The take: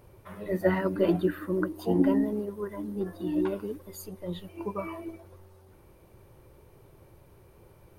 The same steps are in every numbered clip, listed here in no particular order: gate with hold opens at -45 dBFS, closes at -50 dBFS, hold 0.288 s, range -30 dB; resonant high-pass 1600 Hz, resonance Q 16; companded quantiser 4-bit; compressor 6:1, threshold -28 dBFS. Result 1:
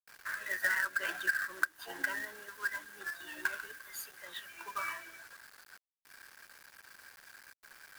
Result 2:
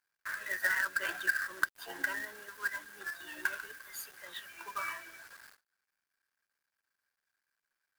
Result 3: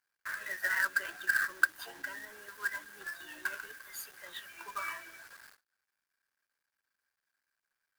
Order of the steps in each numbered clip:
gate with hold > resonant high-pass > companded quantiser > compressor; resonant high-pass > compressor > companded quantiser > gate with hold; compressor > resonant high-pass > companded quantiser > gate with hold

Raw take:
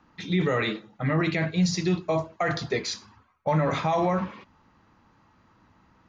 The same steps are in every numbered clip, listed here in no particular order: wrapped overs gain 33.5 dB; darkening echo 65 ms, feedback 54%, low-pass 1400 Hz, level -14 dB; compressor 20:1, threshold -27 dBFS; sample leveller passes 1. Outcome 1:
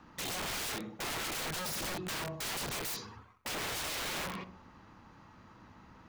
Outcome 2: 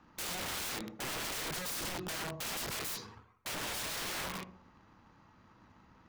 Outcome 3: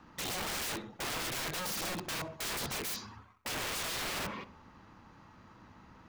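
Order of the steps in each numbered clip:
darkening echo > compressor > wrapped overs > sample leveller; sample leveller > darkening echo > compressor > wrapped overs; compressor > wrapped overs > darkening echo > sample leveller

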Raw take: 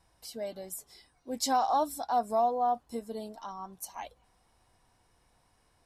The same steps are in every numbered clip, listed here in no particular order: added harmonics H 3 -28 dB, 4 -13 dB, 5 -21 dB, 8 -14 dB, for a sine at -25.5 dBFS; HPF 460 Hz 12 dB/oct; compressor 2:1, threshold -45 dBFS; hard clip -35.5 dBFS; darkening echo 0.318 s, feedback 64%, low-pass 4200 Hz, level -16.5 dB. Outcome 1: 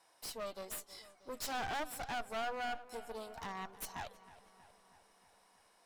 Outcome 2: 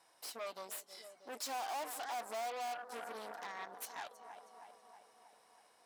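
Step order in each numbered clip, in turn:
compressor > HPF > added harmonics > hard clip > darkening echo; darkening echo > added harmonics > compressor > hard clip > HPF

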